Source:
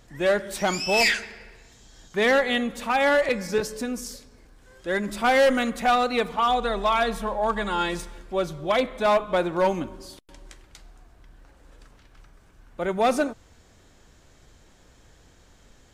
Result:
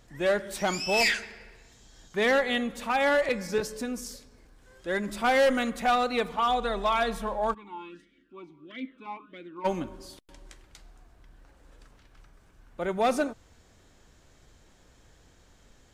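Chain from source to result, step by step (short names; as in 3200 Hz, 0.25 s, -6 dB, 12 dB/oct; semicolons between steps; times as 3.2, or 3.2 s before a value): 7.53–9.64 vowel sweep i-u 1.1 Hz -> 2 Hz; gain -3.5 dB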